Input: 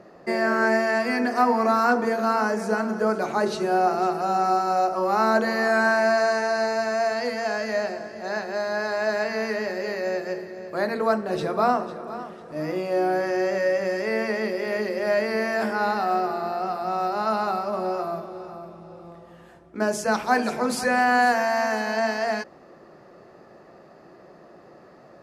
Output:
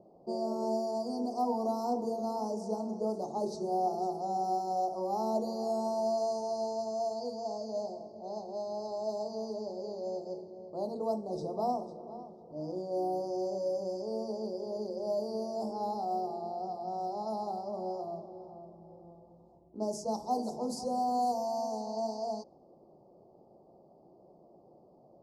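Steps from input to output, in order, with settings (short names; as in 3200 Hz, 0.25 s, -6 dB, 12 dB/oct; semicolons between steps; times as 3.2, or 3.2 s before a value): low-pass opened by the level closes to 2400 Hz, open at -18 dBFS; elliptic band-stop 860–4900 Hz, stop band 50 dB; gain -9 dB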